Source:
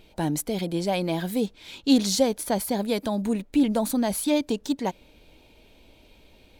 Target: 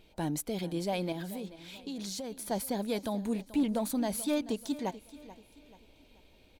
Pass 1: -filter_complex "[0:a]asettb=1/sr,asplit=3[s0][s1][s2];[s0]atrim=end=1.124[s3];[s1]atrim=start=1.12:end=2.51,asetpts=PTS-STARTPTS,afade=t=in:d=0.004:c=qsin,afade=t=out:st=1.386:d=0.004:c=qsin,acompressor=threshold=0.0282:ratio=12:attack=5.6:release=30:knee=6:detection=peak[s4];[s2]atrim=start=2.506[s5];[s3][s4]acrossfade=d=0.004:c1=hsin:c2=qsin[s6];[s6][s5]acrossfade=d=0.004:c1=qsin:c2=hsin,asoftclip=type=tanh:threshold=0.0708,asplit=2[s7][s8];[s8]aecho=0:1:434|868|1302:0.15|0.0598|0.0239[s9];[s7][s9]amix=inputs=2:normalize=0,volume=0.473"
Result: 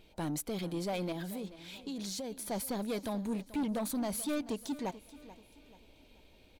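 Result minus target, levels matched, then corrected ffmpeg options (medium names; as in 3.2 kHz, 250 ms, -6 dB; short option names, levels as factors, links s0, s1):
saturation: distortion +13 dB
-filter_complex "[0:a]asettb=1/sr,asplit=3[s0][s1][s2];[s0]atrim=end=1.124[s3];[s1]atrim=start=1.12:end=2.51,asetpts=PTS-STARTPTS,afade=t=in:d=0.004:c=qsin,afade=t=out:st=1.386:d=0.004:c=qsin,acompressor=threshold=0.0282:ratio=12:attack=5.6:release=30:knee=6:detection=peak[s4];[s2]atrim=start=2.506[s5];[s3][s4]acrossfade=d=0.004:c1=hsin:c2=qsin[s6];[s6][s5]acrossfade=d=0.004:c1=qsin:c2=hsin,asoftclip=type=tanh:threshold=0.237,asplit=2[s7][s8];[s8]aecho=0:1:434|868|1302:0.15|0.0598|0.0239[s9];[s7][s9]amix=inputs=2:normalize=0,volume=0.473"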